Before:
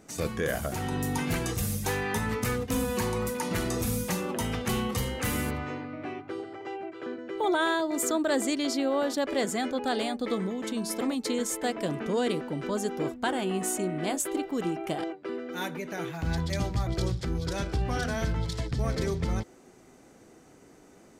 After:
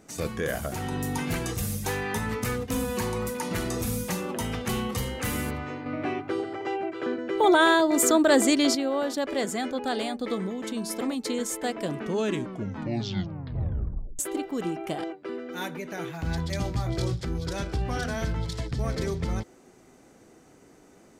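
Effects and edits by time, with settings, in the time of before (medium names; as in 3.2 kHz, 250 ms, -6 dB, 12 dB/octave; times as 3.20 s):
5.86–8.75 s: gain +7 dB
11.99 s: tape stop 2.20 s
16.63–17.16 s: doubling 24 ms -7 dB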